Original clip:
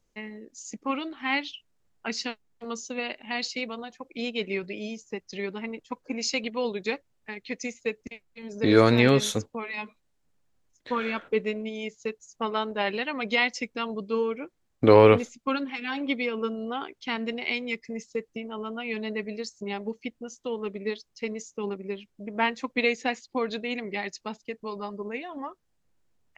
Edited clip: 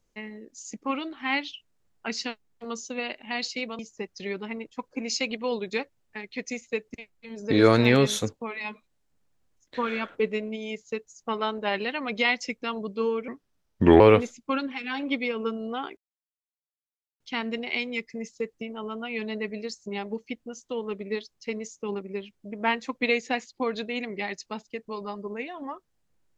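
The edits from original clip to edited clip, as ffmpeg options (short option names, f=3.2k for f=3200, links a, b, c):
-filter_complex "[0:a]asplit=5[a][b][c][d][e];[a]atrim=end=3.792[f];[b]atrim=start=4.918:end=14.414[g];[c]atrim=start=14.41:end=14.98,asetpts=PTS-STARTPTS,asetrate=34839,aresample=44100[h];[d]atrim=start=14.976:end=16.95,asetpts=PTS-STARTPTS,afade=t=out:st=1.97:d=0.004:c=hsin,apad=pad_dur=1.23[i];[e]atrim=start=16.95,asetpts=PTS-STARTPTS,afade=t=in:d=0.004:c=hsin[j];[f][g]acrossfade=d=0.004:c1=hsin:c2=hsin[k];[k][h]acrossfade=d=0.004:c1=hsin:c2=hsin[l];[i][j]concat=n=2:v=0:a=1[m];[l][m]acrossfade=d=0.004:c1=hsin:c2=hsin"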